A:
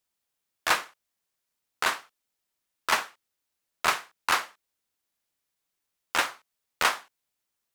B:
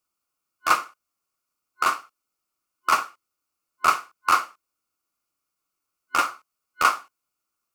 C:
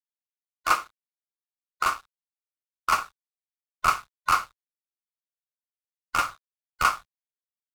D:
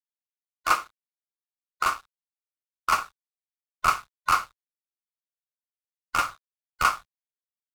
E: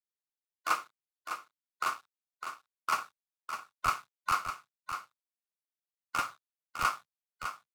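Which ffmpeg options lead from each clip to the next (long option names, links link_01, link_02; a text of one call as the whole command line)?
ffmpeg -i in.wav -af "superequalizer=6b=1.58:10b=2.82:11b=0.447:13b=0.501" out.wav
ffmpeg -i in.wav -af "aeval=exprs='sgn(val(0))*max(abs(val(0))-0.00501,0)':channel_layout=same,asubboost=boost=9:cutoff=110,volume=-2dB" out.wav
ffmpeg -i in.wav -af anull out.wav
ffmpeg -i in.wav -filter_complex "[0:a]acrossover=split=110|1900[link_01][link_02][link_03];[link_01]acrusher=bits=5:mix=0:aa=0.000001[link_04];[link_04][link_02][link_03]amix=inputs=3:normalize=0,aecho=1:1:605:0.376,volume=-7.5dB" out.wav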